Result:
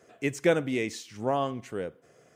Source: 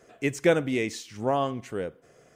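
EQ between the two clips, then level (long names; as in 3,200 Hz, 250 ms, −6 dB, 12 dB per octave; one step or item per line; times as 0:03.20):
high-pass filter 74 Hz
−2.0 dB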